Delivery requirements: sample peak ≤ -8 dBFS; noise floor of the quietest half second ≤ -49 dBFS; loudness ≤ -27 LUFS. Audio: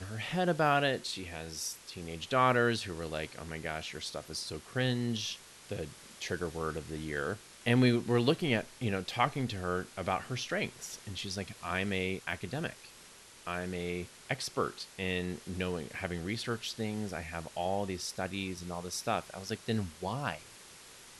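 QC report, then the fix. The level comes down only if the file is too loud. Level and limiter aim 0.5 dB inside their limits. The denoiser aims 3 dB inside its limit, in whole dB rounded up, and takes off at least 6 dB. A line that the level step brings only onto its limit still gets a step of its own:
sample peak -12.5 dBFS: pass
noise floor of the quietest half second -55 dBFS: pass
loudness -34.5 LUFS: pass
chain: none needed

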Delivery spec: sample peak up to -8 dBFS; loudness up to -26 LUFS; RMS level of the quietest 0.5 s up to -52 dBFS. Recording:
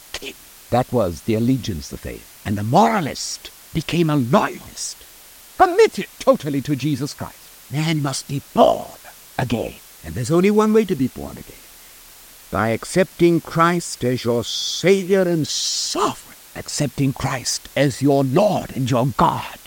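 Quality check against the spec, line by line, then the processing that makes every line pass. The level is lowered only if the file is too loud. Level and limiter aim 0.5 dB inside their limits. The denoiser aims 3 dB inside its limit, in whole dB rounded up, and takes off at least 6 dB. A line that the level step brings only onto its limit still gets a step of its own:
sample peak -1.5 dBFS: fail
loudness -19.5 LUFS: fail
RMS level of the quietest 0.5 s -44 dBFS: fail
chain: noise reduction 6 dB, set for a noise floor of -44 dBFS; trim -7 dB

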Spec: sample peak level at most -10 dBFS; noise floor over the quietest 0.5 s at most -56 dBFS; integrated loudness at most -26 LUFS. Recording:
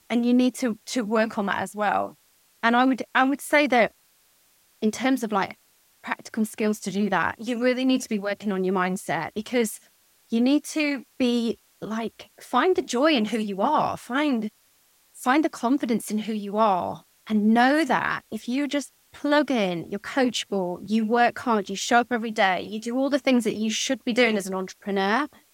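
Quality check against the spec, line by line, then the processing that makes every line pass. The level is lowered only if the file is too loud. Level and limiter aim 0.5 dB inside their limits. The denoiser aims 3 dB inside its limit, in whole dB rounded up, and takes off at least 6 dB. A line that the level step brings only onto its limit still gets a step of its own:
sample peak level -5.5 dBFS: fail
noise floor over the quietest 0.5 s -62 dBFS: pass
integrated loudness -24.0 LUFS: fail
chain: trim -2.5 dB; peak limiter -10.5 dBFS

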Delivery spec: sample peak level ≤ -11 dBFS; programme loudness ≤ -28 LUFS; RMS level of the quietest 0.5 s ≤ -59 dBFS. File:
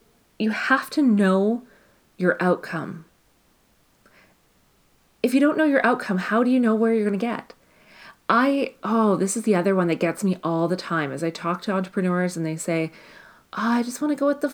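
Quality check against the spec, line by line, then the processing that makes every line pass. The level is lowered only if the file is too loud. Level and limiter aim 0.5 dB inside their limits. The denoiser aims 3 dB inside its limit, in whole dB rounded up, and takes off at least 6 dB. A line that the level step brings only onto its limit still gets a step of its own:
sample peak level -4.5 dBFS: fail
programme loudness -22.5 LUFS: fail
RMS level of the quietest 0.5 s -61 dBFS: pass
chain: trim -6 dB; peak limiter -11.5 dBFS

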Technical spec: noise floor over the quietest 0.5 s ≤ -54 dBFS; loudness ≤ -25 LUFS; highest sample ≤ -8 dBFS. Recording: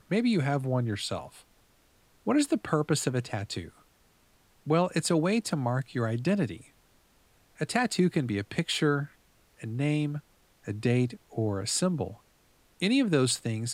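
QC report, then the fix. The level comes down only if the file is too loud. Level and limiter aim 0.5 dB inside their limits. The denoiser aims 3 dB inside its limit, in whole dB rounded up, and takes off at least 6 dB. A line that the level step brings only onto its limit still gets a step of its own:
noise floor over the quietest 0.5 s -64 dBFS: pass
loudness -29.0 LUFS: pass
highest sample -10.0 dBFS: pass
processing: none needed

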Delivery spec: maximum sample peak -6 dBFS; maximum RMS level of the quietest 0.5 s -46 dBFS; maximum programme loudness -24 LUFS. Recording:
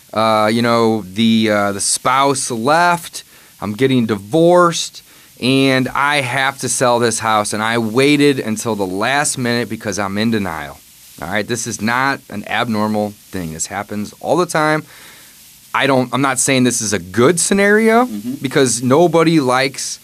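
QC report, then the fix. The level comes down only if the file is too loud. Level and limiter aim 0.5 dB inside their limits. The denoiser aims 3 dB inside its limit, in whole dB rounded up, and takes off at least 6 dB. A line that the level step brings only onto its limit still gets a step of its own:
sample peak -1.5 dBFS: fail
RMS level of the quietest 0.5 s -43 dBFS: fail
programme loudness -15.0 LUFS: fail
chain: trim -9.5 dB

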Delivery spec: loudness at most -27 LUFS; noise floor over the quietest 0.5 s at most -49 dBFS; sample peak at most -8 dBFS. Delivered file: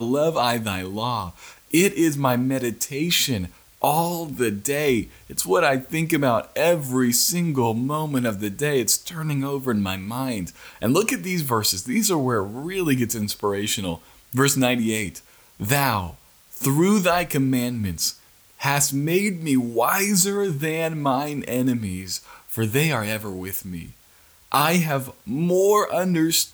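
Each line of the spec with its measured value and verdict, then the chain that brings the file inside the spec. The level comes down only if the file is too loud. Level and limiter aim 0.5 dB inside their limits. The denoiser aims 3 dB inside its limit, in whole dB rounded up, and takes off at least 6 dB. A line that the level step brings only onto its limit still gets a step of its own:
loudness -22.0 LUFS: fail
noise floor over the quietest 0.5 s -54 dBFS: pass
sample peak -6.0 dBFS: fail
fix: trim -5.5 dB

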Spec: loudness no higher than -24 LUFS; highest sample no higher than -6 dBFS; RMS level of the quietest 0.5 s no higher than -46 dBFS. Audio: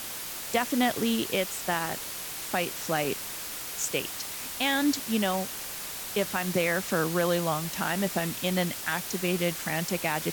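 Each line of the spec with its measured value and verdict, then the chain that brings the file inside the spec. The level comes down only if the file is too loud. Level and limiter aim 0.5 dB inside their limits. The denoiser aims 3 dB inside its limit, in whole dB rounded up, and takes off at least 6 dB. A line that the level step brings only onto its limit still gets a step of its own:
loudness -28.5 LUFS: pass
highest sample -13.0 dBFS: pass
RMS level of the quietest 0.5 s -37 dBFS: fail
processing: noise reduction 12 dB, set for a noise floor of -37 dBFS

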